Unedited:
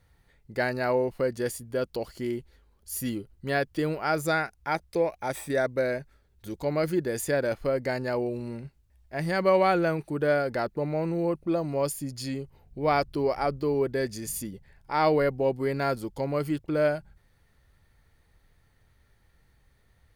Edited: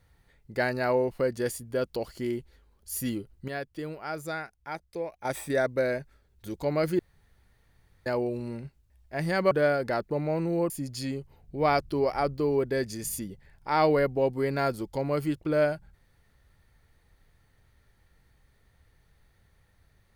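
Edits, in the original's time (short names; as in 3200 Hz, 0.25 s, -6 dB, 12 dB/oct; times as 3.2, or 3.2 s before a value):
3.48–5.25 gain -8.5 dB
6.99–8.06 room tone
9.51–10.17 cut
11.36–11.93 cut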